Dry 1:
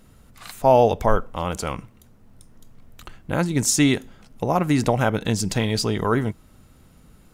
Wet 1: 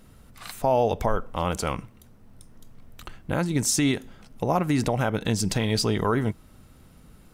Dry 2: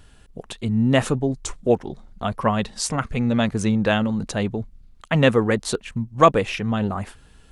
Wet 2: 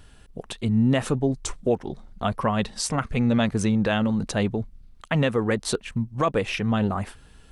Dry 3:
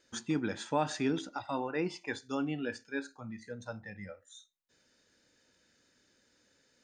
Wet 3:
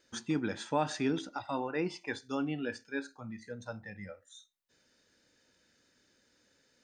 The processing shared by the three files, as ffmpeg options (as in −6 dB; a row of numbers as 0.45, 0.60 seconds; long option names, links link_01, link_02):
-af "bandreject=frequency=6900:width=20,alimiter=limit=-12dB:level=0:latency=1:release=170"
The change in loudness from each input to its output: −4.0, −3.0, 0.0 LU